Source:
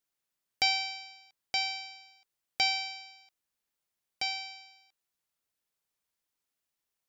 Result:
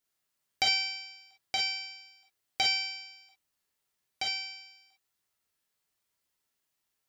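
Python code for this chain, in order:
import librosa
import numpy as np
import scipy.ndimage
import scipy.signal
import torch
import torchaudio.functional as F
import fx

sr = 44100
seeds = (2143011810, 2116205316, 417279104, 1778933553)

y = fx.rev_gated(x, sr, seeds[0], gate_ms=80, shape='flat', drr_db=-2.5)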